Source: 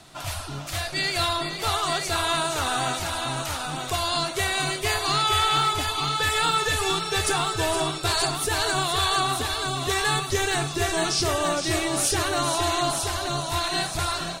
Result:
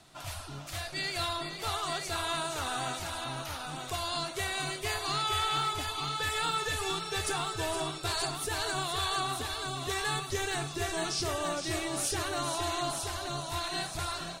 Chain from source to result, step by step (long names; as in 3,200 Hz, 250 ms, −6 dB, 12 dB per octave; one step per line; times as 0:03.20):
0:03.24–0:03.67: parametric band 7,800 Hz −9.5 dB 0.3 octaves
level −8.5 dB